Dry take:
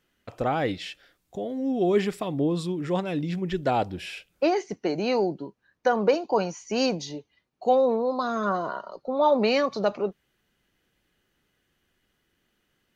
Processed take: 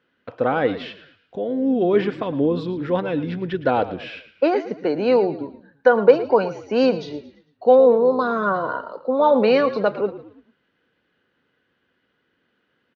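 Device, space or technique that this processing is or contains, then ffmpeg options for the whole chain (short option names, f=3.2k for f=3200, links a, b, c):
frequency-shifting delay pedal into a guitar cabinet: -filter_complex "[0:a]asplit=5[a][b][c][d][e];[b]adelay=112,afreqshift=-47,volume=-14dB[f];[c]adelay=224,afreqshift=-94,volume=-22dB[g];[d]adelay=336,afreqshift=-141,volume=-29.9dB[h];[e]adelay=448,afreqshift=-188,volume=-37.9dB[i];[a][f][g][h][i]amix=inputs=5:normalize=0,highpass=100,equalizer=f=260:t=q:w=4:g=6,equalizer=f=490:t=q:w=4:g=9,equalizer=f=1k:t=q:w=4:g=4,equalizer=f=1.5k:t=q:w=4:g=8,lowpass=f=4.2k:w=0.5412,lowpass=f=4.2k:w=1.3066,volume=1dB"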